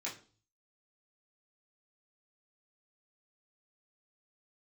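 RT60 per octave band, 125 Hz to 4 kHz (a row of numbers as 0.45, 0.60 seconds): 0.75, 0.50, 0.45, 0.35, 0.35, 0.40 seconds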